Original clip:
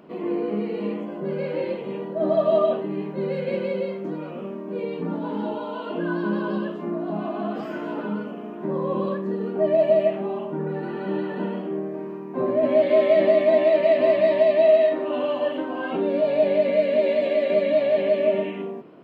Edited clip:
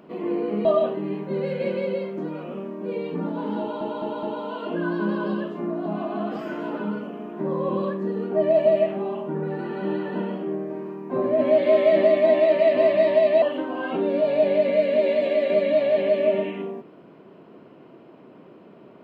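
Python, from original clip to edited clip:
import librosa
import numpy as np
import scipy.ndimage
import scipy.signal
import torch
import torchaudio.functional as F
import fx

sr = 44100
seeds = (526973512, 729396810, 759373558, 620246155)

y = fx.edit(x, sr, fx.cut(start_s=0.65, length_s=1.87),
    fx.stutter(start_s=5.47, slice_s=0.21, count=4),
    fx.cut(start_s=14.66, length_s=0.76), tone=tone)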